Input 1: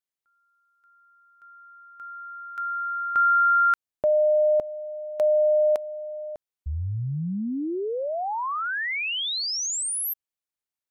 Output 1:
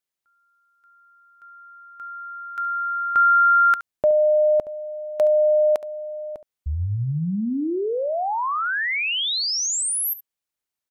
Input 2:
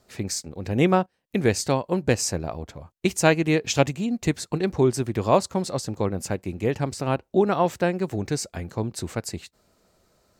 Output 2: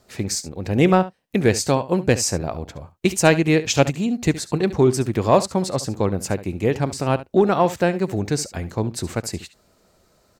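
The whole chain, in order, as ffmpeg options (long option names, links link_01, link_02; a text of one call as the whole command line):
ffmpeg -i in.wav -filter_complex "[0:a]asplit=2[link_01][link_02];[link_02]asoftclip=type=hard:threshold=-14.5dB,volume=-9.5dB[link_03];[link_01][link_03]amix=inputs=2:normalize=0,aecho=1:1:70:0.168,volume=1.5dB" out.wav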